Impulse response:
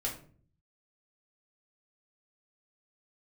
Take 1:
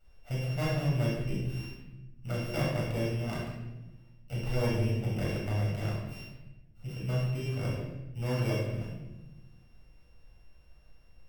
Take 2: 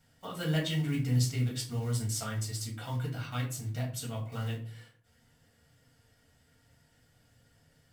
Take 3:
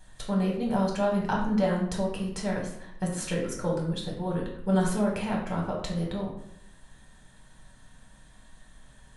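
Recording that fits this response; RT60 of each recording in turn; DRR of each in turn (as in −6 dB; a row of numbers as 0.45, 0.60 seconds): 2; 1.0, 0.45, 0.75 seconds; −7.0, −3.5, −2.0 decibels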